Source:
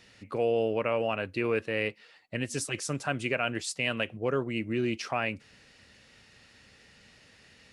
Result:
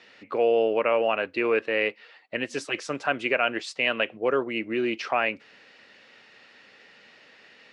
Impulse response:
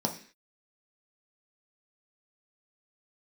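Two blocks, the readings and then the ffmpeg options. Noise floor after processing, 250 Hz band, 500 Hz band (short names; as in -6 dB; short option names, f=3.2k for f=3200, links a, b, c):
-55 dBFS, +1.5 dB, +5.5 dB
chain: -af "highpass=340,lowpass=3.5k,volume=6.5dB"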